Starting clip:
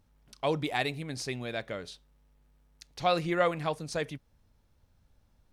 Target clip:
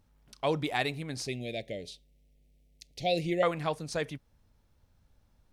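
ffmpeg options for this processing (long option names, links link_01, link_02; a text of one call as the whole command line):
ffmpeg -i in.wav -filter_complex "[0:a]asettb=1/sr,asplit=3[link_01][link_02][link_03];[link_01]atrim=end=1.274[link_04];[link_02]atrim=start=1.27:end=3.43,asetpts=PTS-STARTPTS,afade=type=in:duration=0.004:curve=qsin,afade=type=out:start_time=2.156:duration=0.004:curve=qsin,asuperstop=centerf=1200:order=8:qfactor=0.88[link_05];[link_03]atrim=start=3.426[link_06];[link_04][link_05]acrossfade=duration=0.004:curve1=hsin:curve2=qsin[link_07];[link_07][link_06]acrossfade=duration=0.004:curve1=qsin:curve2=hsin" out.wav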